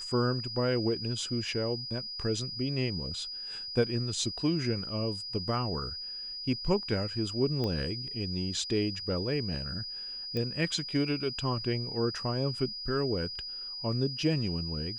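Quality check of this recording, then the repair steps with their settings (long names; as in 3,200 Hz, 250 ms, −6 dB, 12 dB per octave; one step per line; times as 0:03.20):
whistle 4,900 Hz −37 dBFS
0:07.64: click −21 dBFS
0:10.37: click −22 dBFS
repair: click removal
notch filter 4,900 Hz, Q 30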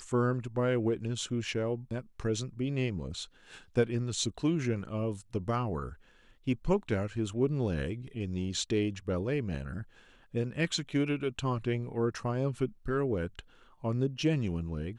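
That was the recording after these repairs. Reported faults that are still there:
none of them is left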